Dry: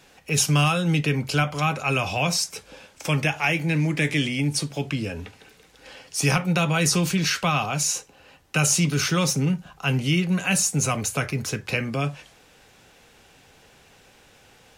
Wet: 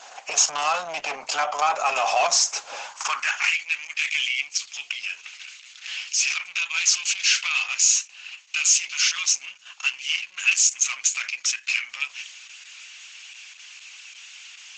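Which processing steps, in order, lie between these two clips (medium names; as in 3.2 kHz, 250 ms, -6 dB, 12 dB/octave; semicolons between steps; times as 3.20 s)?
in parallel at +1 dB: compression 8:1, threshold -37 dBFS, peak gain reduction 20.5 dB; on the sum: saturation -21.5 dBFS, distortion -10 dB; high-pass sweep 670 Hz -> 2.5 kHz, 2.77–3.58 s; cabinet simulation 310–7000 Hz, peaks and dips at 340 Hz -9 dB, 490 Hz -9 dB, 1.1 kHz +4 dB, 1.9 kHz -5 dB, 3.7 kHz -4 dB, 6.7 kHz +8 dB; trim +4.5 dB; Opus 10 kbps 48 kHz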